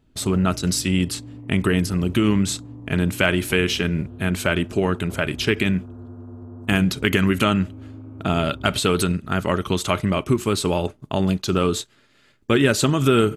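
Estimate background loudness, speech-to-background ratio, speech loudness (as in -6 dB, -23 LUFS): -39.0 LUFS, 17.5 dB, -21.5 LUFS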